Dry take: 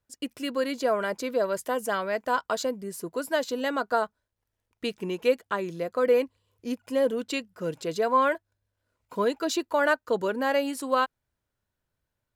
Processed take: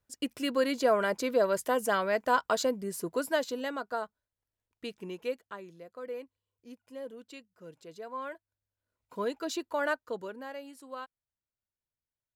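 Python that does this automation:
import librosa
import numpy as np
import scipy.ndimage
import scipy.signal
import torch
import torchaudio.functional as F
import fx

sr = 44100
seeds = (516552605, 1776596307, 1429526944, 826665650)

y = fx.gain(x, sr, db=fx.line((3.17, 0.0), (3.85, -9.0), (5.13, -9.0), (5.83, -17.5), (8.08, -17.5), (9.27, -7.0), (9.93, -7.0), (10.55, -17.5)))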